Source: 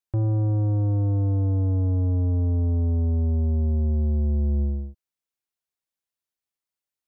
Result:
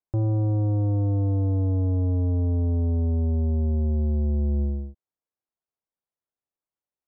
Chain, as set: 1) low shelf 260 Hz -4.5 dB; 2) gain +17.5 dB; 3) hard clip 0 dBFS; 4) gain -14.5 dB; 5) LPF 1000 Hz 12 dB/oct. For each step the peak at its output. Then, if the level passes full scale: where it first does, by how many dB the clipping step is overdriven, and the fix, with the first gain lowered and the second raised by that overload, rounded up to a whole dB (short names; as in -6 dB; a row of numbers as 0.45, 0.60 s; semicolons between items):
-22.5, -5.0, -5.0, -19.5, -19.5 dBFS; no overload